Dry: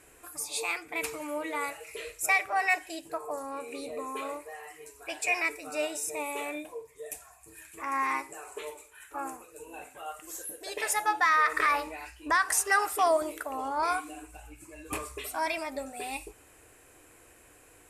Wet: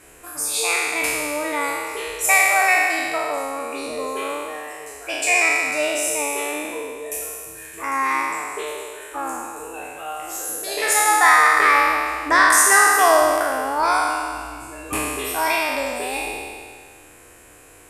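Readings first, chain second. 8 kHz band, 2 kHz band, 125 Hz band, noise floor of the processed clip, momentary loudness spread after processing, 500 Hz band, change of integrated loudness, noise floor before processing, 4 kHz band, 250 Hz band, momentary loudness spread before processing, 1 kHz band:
+14.0 dB, +12.5 dB, no reading, -47 dBFS, 19 LU, +10.5 dB, +11.5 dB, -58 dBFS, +12.5 dB, +9.5 dB, 19 LU, +11.0 dB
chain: spectral sustain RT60 1.96 s; trim +6.5 dB

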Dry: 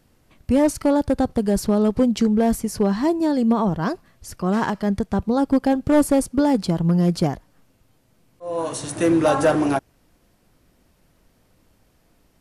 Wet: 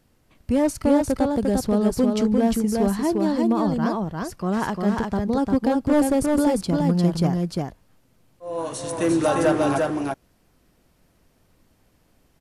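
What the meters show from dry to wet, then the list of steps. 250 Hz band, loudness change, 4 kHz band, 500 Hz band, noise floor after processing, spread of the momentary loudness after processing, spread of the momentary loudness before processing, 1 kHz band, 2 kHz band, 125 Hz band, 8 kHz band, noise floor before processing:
-1.5 dB, -1.5 dB, -1.0 dB, -1.0 dB, -63 dBFS, 9 LU, 9 LU, -1.5 dB, -1.5 dB, -1.0 dB, -1.0 dB, -61 dBFS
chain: delay 350 ms -3 dB; trim -3 dB

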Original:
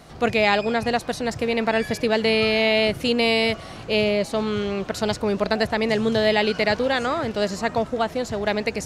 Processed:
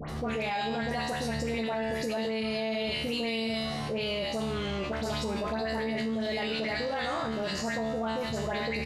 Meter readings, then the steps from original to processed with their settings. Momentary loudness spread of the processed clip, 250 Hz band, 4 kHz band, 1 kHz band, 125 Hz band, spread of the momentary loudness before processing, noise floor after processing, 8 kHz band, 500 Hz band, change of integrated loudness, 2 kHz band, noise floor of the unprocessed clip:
2 LU, -7.5 dB, -8.5 dB, -8.5 dB, -5.0 dB, 6 LU, -34 dBFS, -6.5 dB, -10.5 dB, -9.5 dB, -10.0 dB, -39 dBFS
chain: feedback comb 74 Hz, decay 0.67 s, harmonics all, mix 90%; phase dispersion highs, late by 90 ms, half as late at 1.9 kHz; peak limiter -27.5 dBFS, peak gain reduction 10 dB; doubling 26 ms -11.5 dB; level flattener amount 70%; trim +2 dB

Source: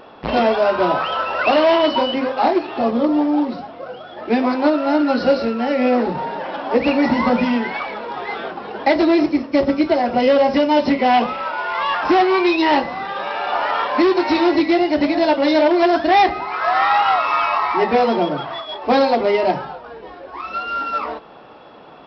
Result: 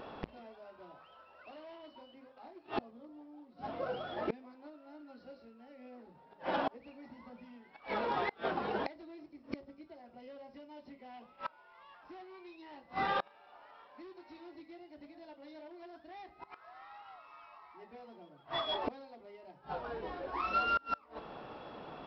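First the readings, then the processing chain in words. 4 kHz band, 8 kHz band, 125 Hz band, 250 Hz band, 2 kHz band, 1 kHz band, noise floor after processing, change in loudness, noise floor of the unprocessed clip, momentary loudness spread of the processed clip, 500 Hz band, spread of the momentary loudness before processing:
-20.5 dB, no reading, -18.5 dB, -29.5 dB, -22.0 dB, -22.5 dB, -62 dBFS, -21.5 dB, -39 dBFS, 20 LU, -26.0 dB, 12 LU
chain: bass shelf 160 Hz +7 dB; inverted gate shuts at -15 dBFS, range -31 dB; trim -6.5 dB

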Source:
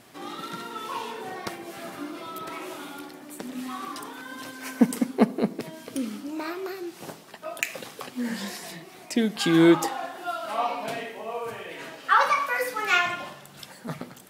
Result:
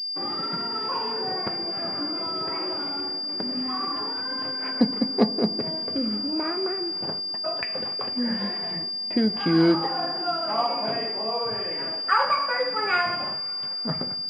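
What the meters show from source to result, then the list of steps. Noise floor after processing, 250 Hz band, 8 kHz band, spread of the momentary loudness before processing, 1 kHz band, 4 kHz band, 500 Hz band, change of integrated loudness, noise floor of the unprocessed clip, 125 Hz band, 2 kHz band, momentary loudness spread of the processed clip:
-31 dBFS, 0.0 dB, under -20 dB, 17 LU, +0.5 dB, +13.0 dB, +1.0 dB, +2.5 dB, -48 dBFS, +1.5 dB, -2.0 dB, 5 LU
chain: gate -43 dBFS, range -18 dB; compression 1.5:1, threshold -30 dBFS, peak gain reduction 6.5 dB; distance through air 210 m; two-slope reverb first 0.21 s, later 4.3 s, from -20 dB, DRR 10 dB; class-D stage that switches slowly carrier 4.8 kHz; trim +5 dB

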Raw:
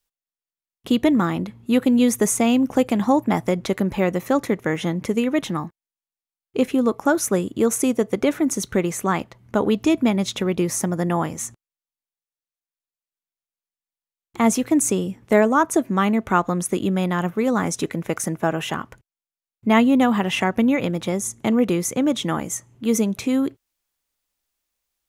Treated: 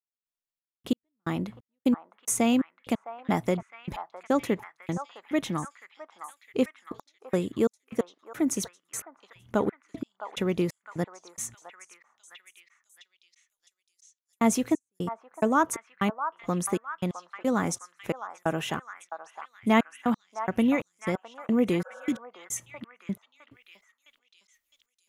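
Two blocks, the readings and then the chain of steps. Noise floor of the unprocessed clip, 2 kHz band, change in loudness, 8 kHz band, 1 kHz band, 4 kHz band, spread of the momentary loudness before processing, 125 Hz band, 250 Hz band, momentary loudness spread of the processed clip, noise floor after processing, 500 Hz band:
under -85 dBFS, -8.0 dB, -8.5 dB, -9.0 dB, -7.5 dB, -9.5 dB, 8 LU, -9.0 dB, -9.0 dB, 17 LU, under -85 dBFS, -9.0 dB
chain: trance gate "...xxxx...x." 178 bpm -60 dB; repeats whose band climbs or falls 660 ms, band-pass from 1 kHz, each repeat 0.7 oct, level -6 dB; spectral replace 21.88–22.16 s, 480–1700 Hz before; trim -5 dB

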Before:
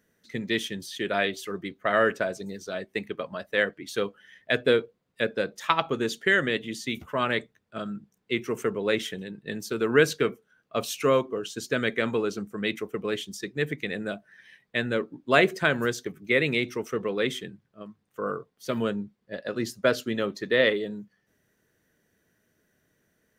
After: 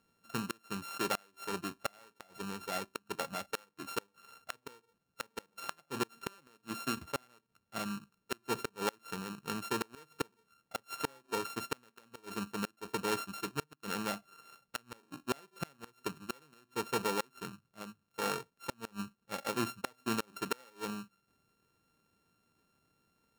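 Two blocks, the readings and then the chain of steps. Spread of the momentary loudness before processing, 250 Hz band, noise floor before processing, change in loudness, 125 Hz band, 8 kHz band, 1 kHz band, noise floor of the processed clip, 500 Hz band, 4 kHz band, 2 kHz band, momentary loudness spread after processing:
13 LU, -11.0 dB, -73 dBFS, -12.0 dB, -11.5 dB, -4.0 dB, -7.0 dB, -80 dBFS, -16.0 dB, -10.5 dB, -15.5 dB, 11 LU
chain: sorted samples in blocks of 32 samples; inverted gate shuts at -16 dBFS, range -33 dB; trim -4.5 dB

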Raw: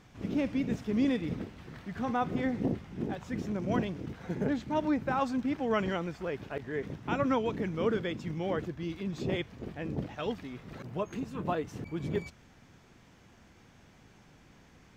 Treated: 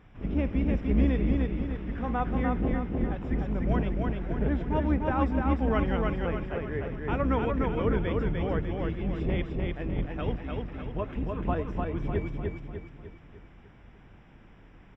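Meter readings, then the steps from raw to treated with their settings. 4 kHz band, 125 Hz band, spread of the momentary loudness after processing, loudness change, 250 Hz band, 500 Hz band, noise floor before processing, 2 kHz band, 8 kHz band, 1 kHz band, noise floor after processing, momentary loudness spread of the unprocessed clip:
-2.5 dB, +8.0 dB, 8 LU, +4.0 dB, +3.0 dB, +2.5 dB, -59 dBFS, +2.0 dB, no reading, +2.0 dB, -53 dBFS, 9 LU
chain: octave divider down 2 oct, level +3 dB; Savitzky-Golay filter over 25 samples; feedback delay 299 ms, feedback 47%, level -3 dB

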